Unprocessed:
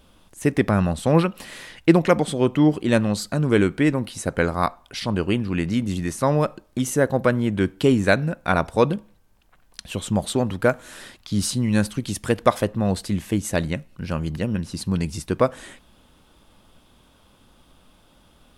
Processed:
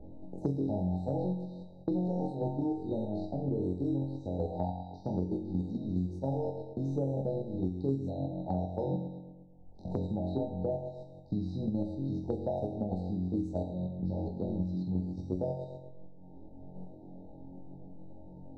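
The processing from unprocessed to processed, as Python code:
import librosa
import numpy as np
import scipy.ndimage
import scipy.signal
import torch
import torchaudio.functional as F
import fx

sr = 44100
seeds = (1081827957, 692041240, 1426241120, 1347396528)

p1 = fx.law_mismatch(x, sr, coded='A')
p2 = p1 + fx.room_flutter(p1, sr, wall_m=3.8, rt60_s=0.78, dry=0)
p3 = fx.level_steps(p2, sr, step_db=9)
p4 = fx.resonator_bank(p3, sr, root=37, chord='sus4', decay_s=0.31)
p5 = fx.env_lowpass(p4, sr, base_hz=610.0, full_db=-28.0)
p6 = fx.brickwall_bandstop(p5, sr, low_hz=920.0, high_hz=3700.0)
p7 = fx.env_lowpass_down(p6, sr, base_hz=1800.0, full_db=-31.5)
p8 = fx.peak_eq(p7, sr, hz=78.0, db=4.0, octaves=0.49)
p9 = fx.doubler(p8, sr, ms=16.0, db=-11.5)
p10 = fx.band_squash(p9, sr, depth_pct=100)
y = F.gain(torch.from_numpy(p10), -1.5).numpy()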